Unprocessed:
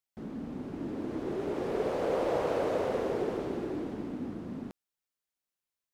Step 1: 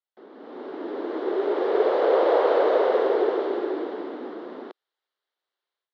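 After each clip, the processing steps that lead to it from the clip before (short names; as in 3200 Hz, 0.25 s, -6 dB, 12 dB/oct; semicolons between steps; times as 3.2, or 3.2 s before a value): elliptic band-pass 380–3900 Hz, stop band 60 dB; bell 2500 Hz -9 dB 0.33 oct; AGC gain up to 11 dB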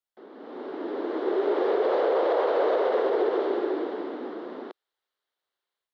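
limiter -15.5 dBFS, peak gain reduction 7 dB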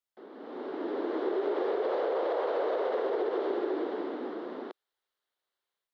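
compressor, threshold -25 dBFS, peak gain reduction 5.5 dB; gain -1.5 dB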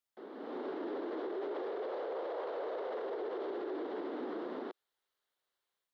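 limiter -32 dBFS, peak gain reduction 11.5 dB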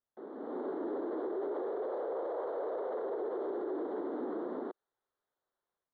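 running mean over 17 samples; gain +3 dB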